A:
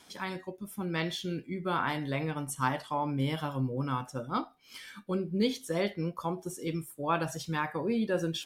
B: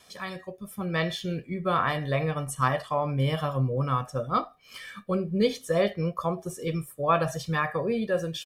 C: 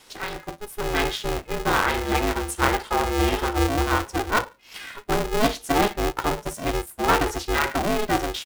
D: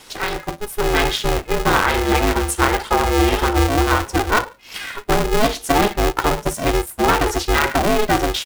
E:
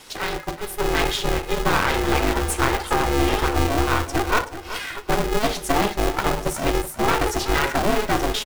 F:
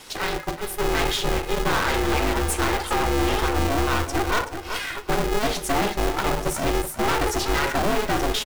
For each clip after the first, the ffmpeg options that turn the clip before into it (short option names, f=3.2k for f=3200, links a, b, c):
-filter_complex "[0:a]acrossover=split=2500[a][b];[a]dynaudnorm=f=150:g=9:m=5dB[c];[c][b]amix=inputs=2:normalize=0,aecho=1:1:1.7:0.62"
-af "aeval=exprs='clip(val(0),-1,0.0841)':c=same,aeval=exprs='val(0)*sgn(sin(2*PI*210*n/s))':c=same,volume=4.5dB"
-af "aphaser=in_gain=1:out_gain=1:delay=3:decay=0.21:speed=1.7:type=triangular,acompressor=threshold=-21dB:ratio=3,volume=8dB"
-af "aeval=exprs='clip(val(0),-1,0.075)':c=same,aecho=1:1:378|756|1134:0.237|0.0664|0.0186,volume=-1.5dB"
-af "aeval=exprs='(tanh(10*val(0)+0.3)-tanh(0.3))/10':c=same,volume=2dB"